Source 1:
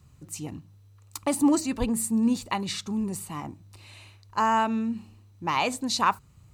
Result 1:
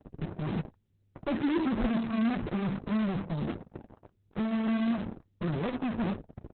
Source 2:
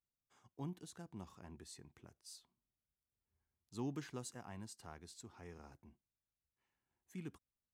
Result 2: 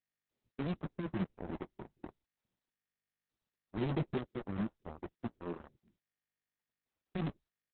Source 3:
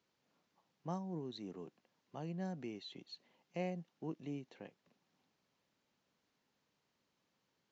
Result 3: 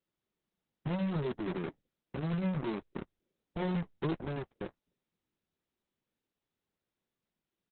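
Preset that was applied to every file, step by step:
Butterworth low-pass 510 Hz 48 dB per octave
comb filter 5.4 ms, depth 54%
in parallel at −6 dB: fuzz pedal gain 55 dB, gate −52 dBFS
on the sum: flanger 1.4 Hz, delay 1.8 ms, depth 8 ms, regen −53%
level −6.5 dB
Opus 6 kbit/s 48,000 Hz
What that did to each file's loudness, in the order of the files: −4.5, +9.5, +9.0 LU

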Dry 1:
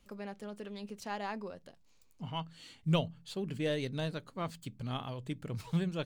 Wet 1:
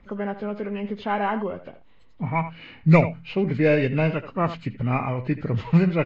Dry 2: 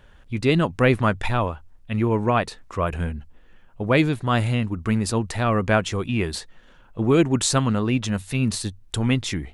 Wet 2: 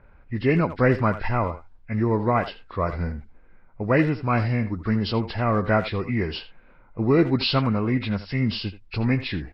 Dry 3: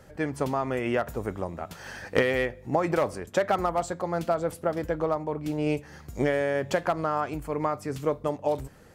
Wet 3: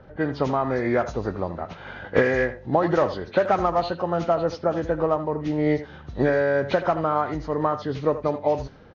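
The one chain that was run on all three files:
hearing-aid frequency compression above 1,300 Hz 1.5 to 1
far-end echo of a speakerphone 80 ms, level −12 dB
low-pass that shuts in the quiet parts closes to 2,000 Hz, open at −21 dBFS
loudness normalisation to −24 LKFS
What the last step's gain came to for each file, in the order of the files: +14.5, −1.0, +4.5 decibels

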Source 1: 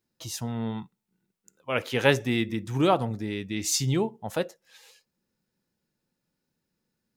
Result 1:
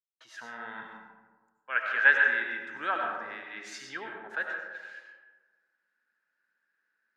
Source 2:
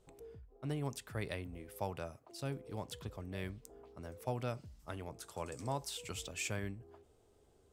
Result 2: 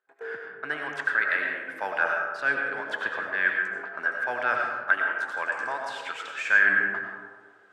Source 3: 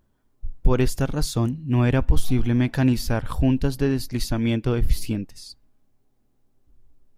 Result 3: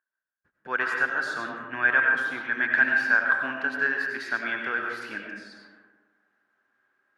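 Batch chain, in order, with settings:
high-pass filter 220 Hz 12 dB per octave
noise gate −56 dBFS, range −41 dB
first difference
reversed playback
upward compression, threshold −43 dBFS
reversed playback
low-pass with resonance 1,600 Hz, resonance Q 13
comb and all-pass reverb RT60 1.4 s, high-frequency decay 0.4×, pre-delay 55 ms, DRR 1 dB
normalise the peak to −9 dBFS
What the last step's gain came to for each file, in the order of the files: +4.5, +20.0, +10.5 decibels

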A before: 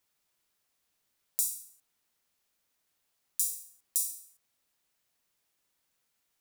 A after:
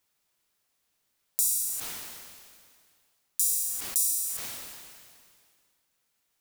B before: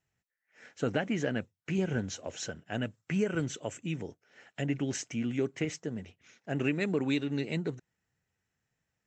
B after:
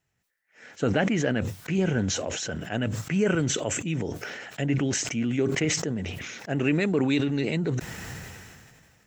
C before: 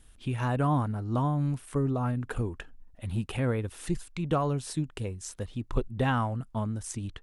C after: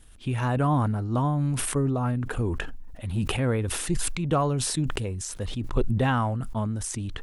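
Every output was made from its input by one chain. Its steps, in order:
level that may fall only so fast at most 28 dB per second
loudness normalisation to −27 LKFS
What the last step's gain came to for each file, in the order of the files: +2.0, +5.0, +2.5 decibels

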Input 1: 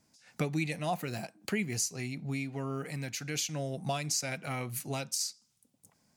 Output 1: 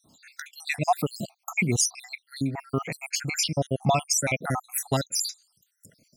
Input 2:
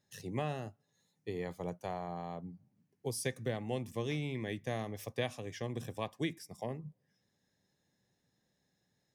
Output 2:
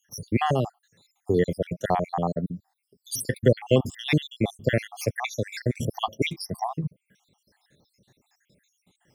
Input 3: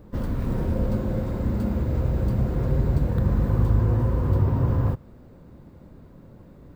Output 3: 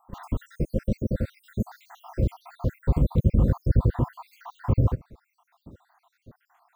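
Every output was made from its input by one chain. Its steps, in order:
time-frequency cells dropped at random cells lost 73%
loudness normalisation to −27 LKFS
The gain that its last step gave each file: +12.5, +18.5, +2.5 decibels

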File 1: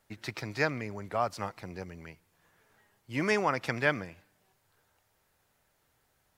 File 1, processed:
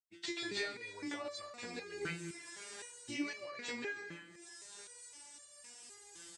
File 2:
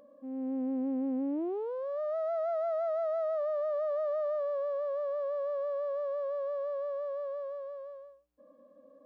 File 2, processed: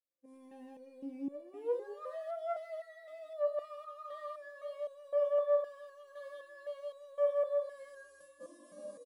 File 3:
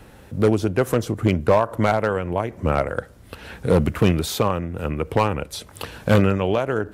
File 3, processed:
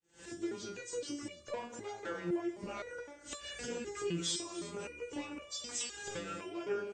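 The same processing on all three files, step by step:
hearing-aid frequency compression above 2,800 Hz 1.5 to 1
camcorder AGC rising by 58 dB per second
first-order pre-emphasis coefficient 0.9
downward expander −45 dBFS
high-pass filter 44 Hz
parametric band 340 Hz +11 dB 0.59 octaves
notch filter 1,300 Hz, Q 15
downward compressor, threshold −33 dBFS
double-tracking delay 17 ms −5.5 dB
reverb whose tail is shaped and stops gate 350 ms rising, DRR 10 dB
step-sequenced resonator 3.9 Hz 170–580 Hz
level +10.5 dB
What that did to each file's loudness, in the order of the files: −11.5, −4.0, −19.0 LU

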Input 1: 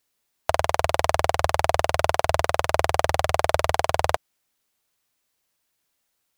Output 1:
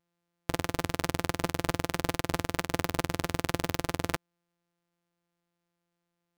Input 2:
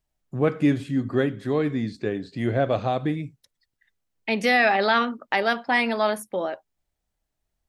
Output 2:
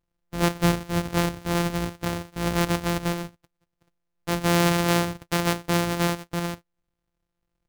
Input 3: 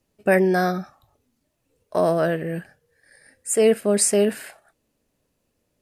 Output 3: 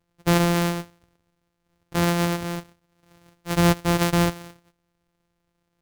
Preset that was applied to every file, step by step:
samples sorted by size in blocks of 256 samples
normalise the peak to −9 dBFS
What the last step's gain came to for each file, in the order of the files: −8.0, −1.0, −1.5 decibels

